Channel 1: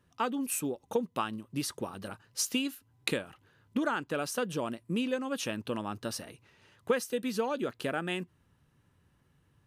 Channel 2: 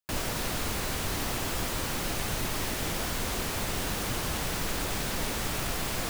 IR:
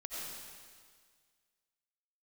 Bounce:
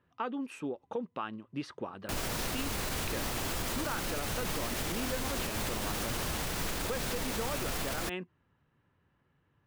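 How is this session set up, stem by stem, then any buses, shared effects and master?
0.0 dB, 0.00 s, no send, low-pass 2.5 kHz 12 dB/octave; bass shelf 240 Hz -7 dB
0.0 dB, 2.00 s, no send, none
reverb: none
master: peak limiter -24.5 dBFS, peak gain reduction 9 dB

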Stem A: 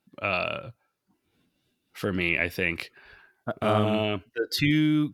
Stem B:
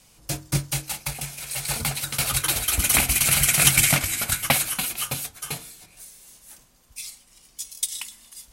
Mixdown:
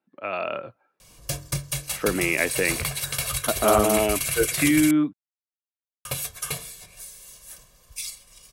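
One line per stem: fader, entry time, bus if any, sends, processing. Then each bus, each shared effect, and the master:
-1.5 dB, 0.00 s, no send, three-band isolator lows -17 dB, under 230 Hz, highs -17 dB, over 2.2 kHz; level rider gain up to 8 dB
+1.5 dB, 1.00 s, muted 4.91–6.05 s, no send, comb 1.8 ms, depth 65%; compression 6:1, threshold -26 dBFS, peak gain reduction 15.5 dB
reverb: none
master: none

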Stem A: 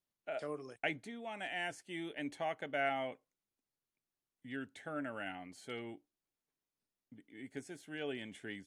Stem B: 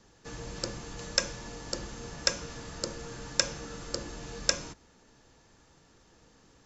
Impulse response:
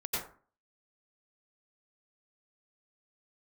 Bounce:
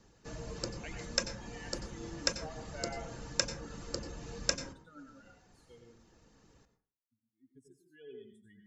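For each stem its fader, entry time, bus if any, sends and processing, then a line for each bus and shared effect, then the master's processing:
-10.5 dB, 0.00 s, send -4.5 dB, expander on every frequency bin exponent 3
-6.0 dB, 0.00 s, send -13 dB, reverb removal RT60 0.55 s; band-stop 3.4 kHz, Q 18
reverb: on, RT60 0.40 s, pre-delay 82 ms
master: bass shelf 430 Hz +4.5 dB

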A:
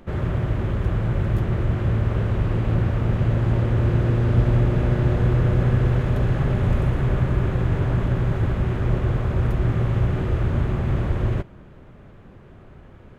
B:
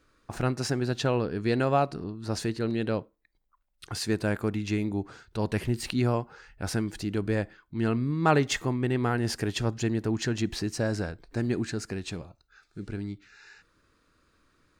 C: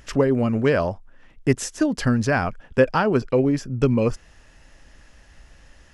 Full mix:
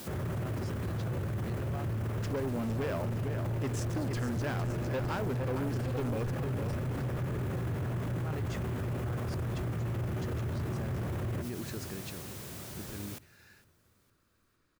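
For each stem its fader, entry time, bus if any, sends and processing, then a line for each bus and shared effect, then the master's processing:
+1.0 dB, 0.00 s, no send, echo send -22 dB, high-pass 77 Hz 24 dB/octave; word length cut 8-bit, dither triangular
-8.5 dB, 0.00 s, no send, no echo send, none
+1.5 dB, 2.15 s, no send, echo send -9 dB, send-on-delta sampling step -34 dBFS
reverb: none
echo: feedback delay 458 ms, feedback 48%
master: saturation -17 dBFS, distortion -10 dB; peak limiter -29 dBFS, peak gain reduction 12 dB

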